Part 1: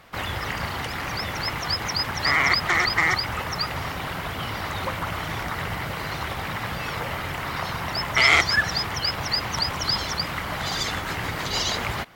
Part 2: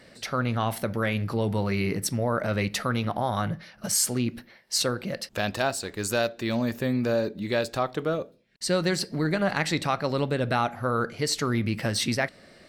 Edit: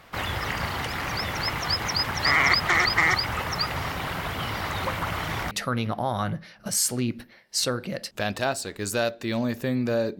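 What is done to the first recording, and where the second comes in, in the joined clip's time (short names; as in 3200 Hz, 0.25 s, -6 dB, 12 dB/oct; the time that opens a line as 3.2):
part 1
5.51 switch to part 2 from 2.69 s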